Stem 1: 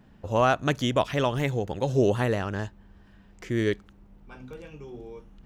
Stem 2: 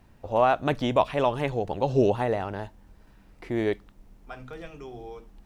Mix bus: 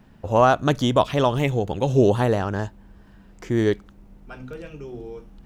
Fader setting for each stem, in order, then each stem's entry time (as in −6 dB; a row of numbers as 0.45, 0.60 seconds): +2.5, −2.5 decibels; 0.00, 0.00 seconds